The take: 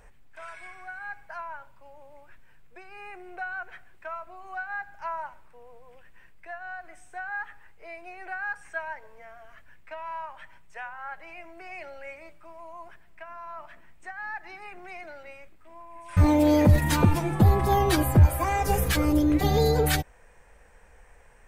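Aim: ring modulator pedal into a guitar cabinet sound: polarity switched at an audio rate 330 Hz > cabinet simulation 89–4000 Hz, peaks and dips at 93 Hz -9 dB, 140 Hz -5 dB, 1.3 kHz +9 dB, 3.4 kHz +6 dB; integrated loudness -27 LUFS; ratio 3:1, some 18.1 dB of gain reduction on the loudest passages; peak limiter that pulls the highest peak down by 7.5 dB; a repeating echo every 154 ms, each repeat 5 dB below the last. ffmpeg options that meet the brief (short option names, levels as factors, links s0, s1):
-af "acompressor=threshold=0.0126:ratio=3,alimiter=level_in=2:limit=0.0631:level=0:latency=1,volume=0.501,aecho=1:1:154|308|462|616|770|924|1078:0.562|0.315|0.176|0.0988|0.0553|0.031|0.0173,aeval=exprs='val(0)*sgn(sin(2*PI*330*n/s))':c=same,highpass=89,equalizer=f=93:t=q:w=4:g=-9,equalizer=f=140:t=q:w=4:g=-5,equalizer=f=1300:t=q:w=4:g=9,equalizer=f=3400:t=q:w=4:g=6,lowpass=f=4000:w=0.5412,lowpass=f=4000:w=1.3066,volume=2.99"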